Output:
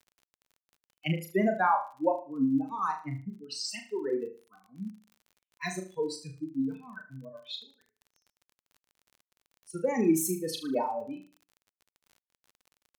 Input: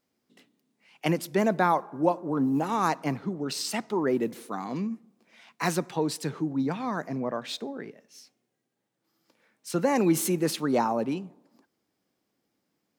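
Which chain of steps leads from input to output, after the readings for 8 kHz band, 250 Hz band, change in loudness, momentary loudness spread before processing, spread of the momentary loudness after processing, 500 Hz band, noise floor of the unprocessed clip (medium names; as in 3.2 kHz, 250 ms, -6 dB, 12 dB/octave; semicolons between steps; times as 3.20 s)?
-3.5 dB, -4.0 dB, -3.0 dB, 11 LU, 16 LU, -4.0 dB, -80 dBFS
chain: expander on every frequency bin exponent 3; flutter echo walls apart 6.4 m, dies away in 0.37 s; crackle 41 per s -48 dBFS; trim +1.5 dB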